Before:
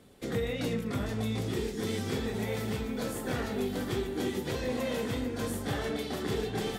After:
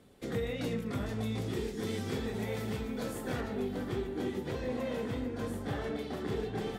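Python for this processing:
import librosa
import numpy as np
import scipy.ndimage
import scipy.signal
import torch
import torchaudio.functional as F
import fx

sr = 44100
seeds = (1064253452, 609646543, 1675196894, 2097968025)

y = fx.high_shelf(x, sr, hz=3100.0, db=fx.steps((0.0, -3.0), (3.4, -10.5)))
y = F.gain(torch.from_numpy(y), -2.5).numpy()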